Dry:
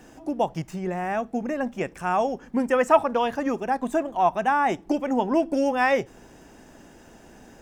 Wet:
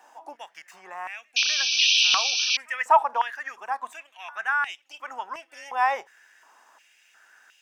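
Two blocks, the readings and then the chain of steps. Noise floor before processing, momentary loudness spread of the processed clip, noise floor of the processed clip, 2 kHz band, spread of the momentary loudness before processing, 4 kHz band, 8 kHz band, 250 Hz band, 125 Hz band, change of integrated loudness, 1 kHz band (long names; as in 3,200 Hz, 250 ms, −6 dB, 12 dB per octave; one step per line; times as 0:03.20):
−50 dBFS, 21 LU, −62 dBFS, +4.0 dB, 9 LU, +20.5 dB, +16.0 dB, below −30 dB, below −30 dB, +2.0 dB, −1.5 dB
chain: echo ahead of the sound 249 ms −23.5 dB
sound drawn into the spectrogram noise, 0:01.36–0:02.57, 2,300–6,200 Hz −20 dBFS
high-pass on a step sequencer 2.8 Hz 900–2,800 Hz
level −6 dB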